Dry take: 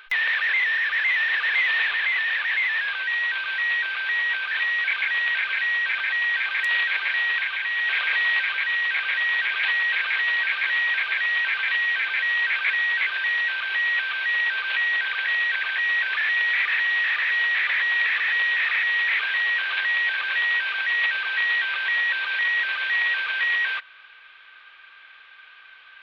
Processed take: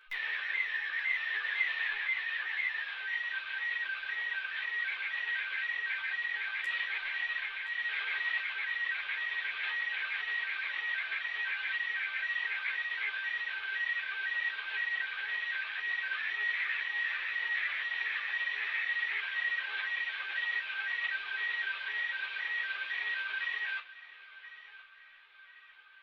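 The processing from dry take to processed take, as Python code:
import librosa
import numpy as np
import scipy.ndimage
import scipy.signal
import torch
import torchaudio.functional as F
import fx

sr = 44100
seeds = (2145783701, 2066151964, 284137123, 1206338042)

y = fx.resonator_bank(x, sr, root=37, chord='minor', decay_s=0.21)
y = fx.echo_feedback(y, sr, ms=1025, feedback_pct=34, wet_db=-16)
y = fx.ensemble(y, sr)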